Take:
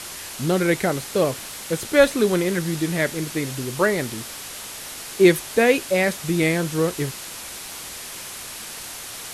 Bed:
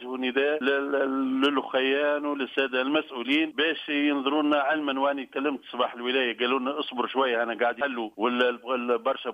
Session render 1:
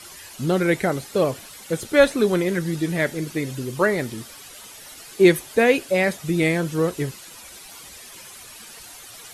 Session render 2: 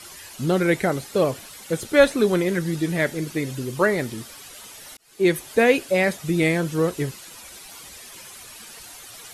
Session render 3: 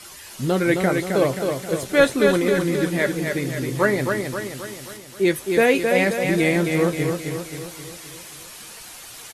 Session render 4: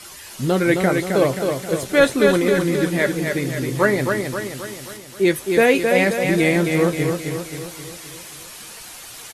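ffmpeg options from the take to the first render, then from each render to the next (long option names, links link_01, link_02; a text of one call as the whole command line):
ffmpeg -i in.wav -af "afftdn=noise_reduction=11:noise_floor=-36" out.wav
ffmpeg -i in.wav -filter_complex "[0:a]asplit=2[link_01][link_02];[link_01]atrim=end=4.97,asetpts=PTS-STARTPTS,afade=type=out:start_time=4.966:duration=0.004:curve=hsin[link_03];[link_02]atrim=start=4.97,asetpts=PTS-STARTPTS,afade=type=in:duration=0.52[link_04];[link_03][link_04]concat=n=2:v=0:a=1" out.wav
ffmpeg -i in.wav -filter_complex "[0:a]asplit=2[link_01][link_02];[link_02]adelay=15,volume=-11dB[link_03];[link_01][link_03]amix=inputs=2:normalize=0,aecho=1:1:265|530|795|1060|1325|1590|1855:0.562|0.298|0.158|0.0837|0.0444|0.0235|0.0125" out.wav
ffmpeg -i in.wav -af "volume=2dB,alimiter=limit=-2dB:level=0:latency=1" out.wav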